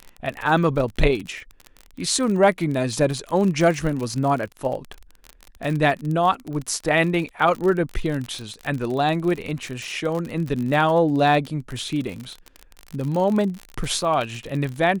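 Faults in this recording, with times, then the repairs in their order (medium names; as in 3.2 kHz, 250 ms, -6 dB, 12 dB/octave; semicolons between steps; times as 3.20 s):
crackle 42 per s -26 dBFS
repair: de-click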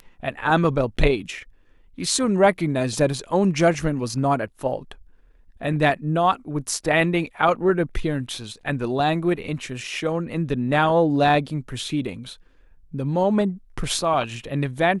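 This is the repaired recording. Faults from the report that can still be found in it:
nothing left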